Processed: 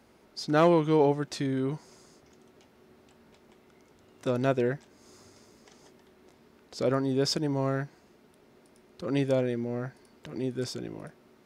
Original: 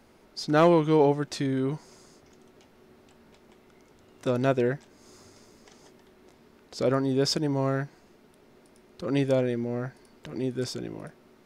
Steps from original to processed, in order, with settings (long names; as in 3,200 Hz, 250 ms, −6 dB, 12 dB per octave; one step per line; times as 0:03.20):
high-pass filter 44 Hz
level −2 dB